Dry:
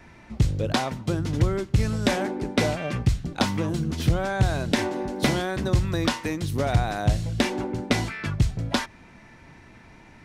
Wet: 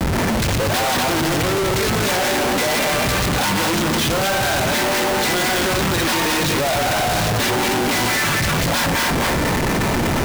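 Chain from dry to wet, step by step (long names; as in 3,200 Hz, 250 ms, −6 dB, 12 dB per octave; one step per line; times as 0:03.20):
feedback delay that plays each chunk backwards 122 ms, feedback 45%, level −1.5 dB
mid-hump overdrive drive 31 dB, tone 5,300 Hz, clips at −6 dBFS
comparator with hysteresis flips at −24 dBFS
level −4 dB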